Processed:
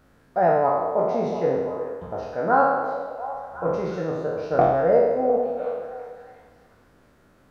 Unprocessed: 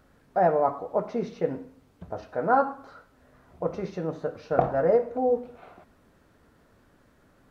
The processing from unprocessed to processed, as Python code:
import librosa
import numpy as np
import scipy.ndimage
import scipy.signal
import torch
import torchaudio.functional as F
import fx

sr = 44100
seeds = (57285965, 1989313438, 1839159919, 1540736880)

y = fx.spec_trails(x, sr, decay_s=1.28)
y = fx.echo_stepped(y, sr, ms=351, hz=460.0, octaves=0.7, feedback_pct=70, wet_db=-9.0)